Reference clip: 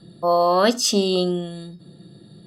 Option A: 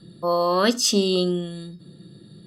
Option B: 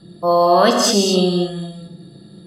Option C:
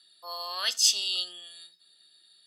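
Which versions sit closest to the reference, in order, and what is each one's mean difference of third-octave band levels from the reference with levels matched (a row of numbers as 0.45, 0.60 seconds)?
A, B, C; 1.5, 3.5, 11.5 decibels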